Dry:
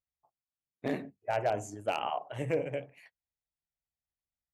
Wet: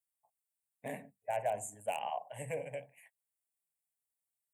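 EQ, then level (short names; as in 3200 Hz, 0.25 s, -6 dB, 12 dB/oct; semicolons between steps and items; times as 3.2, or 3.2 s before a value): HPF 150 Hz 12 dB/oct; resonant high shelf 6500 Hz +9.5 dB, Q 3; fixed phaser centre 1300 Hz, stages 6; -3.0 dB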